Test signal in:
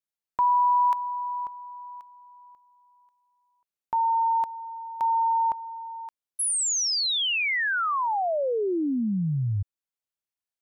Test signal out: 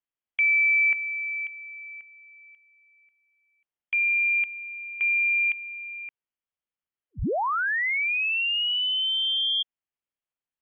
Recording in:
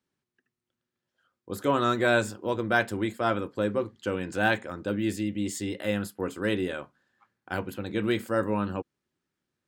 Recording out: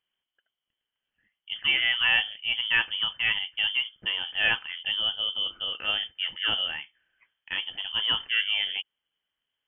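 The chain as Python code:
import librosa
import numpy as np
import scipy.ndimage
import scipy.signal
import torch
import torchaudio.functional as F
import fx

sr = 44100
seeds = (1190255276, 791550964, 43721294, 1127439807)

y = fx.freq_invert(x, sr, carrier_hz=3300)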